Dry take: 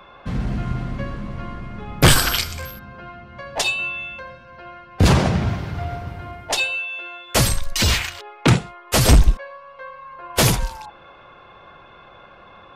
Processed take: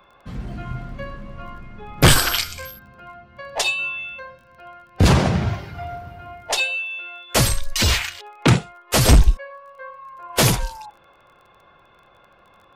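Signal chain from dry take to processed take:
noise reduction from a noise print of the clip's start 8 dB
surface crackle 21 per second −43 dBFS

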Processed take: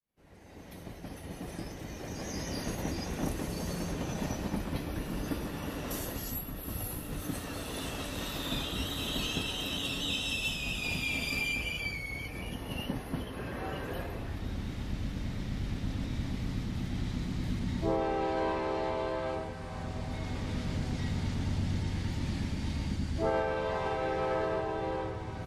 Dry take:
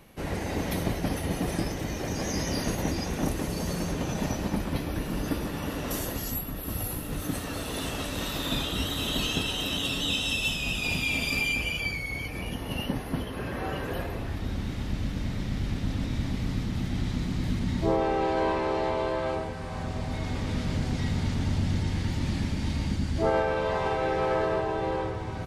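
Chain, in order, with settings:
fade in at the beginning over 3.21 s
level −5 dB

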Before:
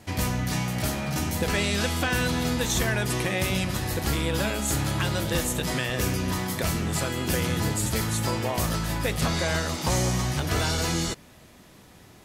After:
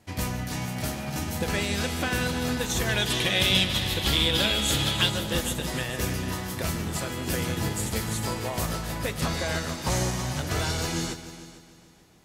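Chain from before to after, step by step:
0:02.89–0:05.10: parametric band 3,400 Hz +15 dB 0.68 octaves
echo machine with several playback heads 149 ms, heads all three, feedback 43%, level −14 dB
expander for the loud parts 1.5 to 1, over −38 dBFS

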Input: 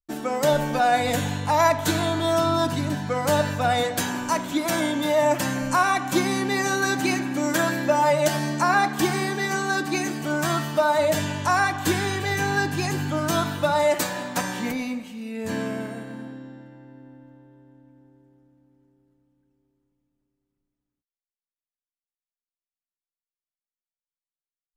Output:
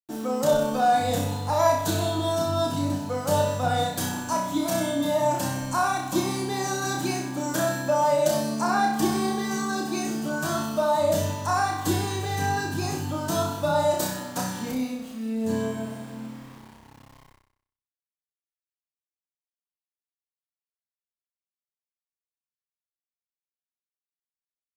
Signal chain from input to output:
parametric band 2,100 Hz −11 dB 0.94 octaves
centre clipping without the shift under −42 dBFS
flutter between parallel walls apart 5.4 metres, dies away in 0.6 s
level −3.5 dB

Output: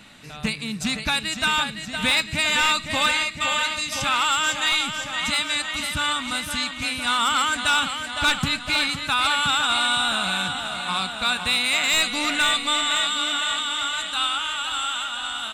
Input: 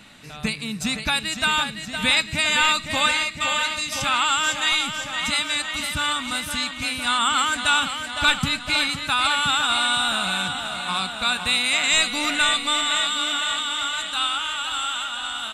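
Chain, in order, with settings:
hard clipping −13.5 dBFS, distortion −19 dB
highs frequency-modulated by the lows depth 0.2 ms

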